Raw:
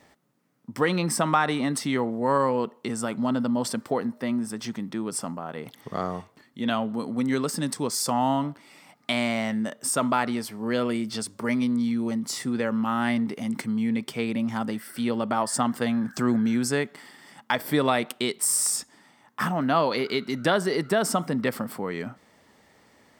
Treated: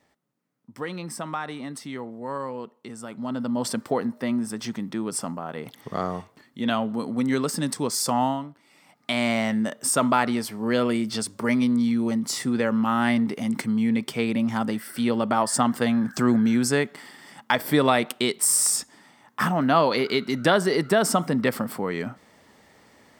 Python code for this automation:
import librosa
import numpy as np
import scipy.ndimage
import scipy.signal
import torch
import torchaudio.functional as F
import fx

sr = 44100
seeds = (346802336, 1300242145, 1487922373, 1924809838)

y = fx.gain(x, sr, db=fx.line((3.03, -9.0), (3.7, 1.5), (8.23, 1.5), (8.49, -10.0), (9.3, 3.0)))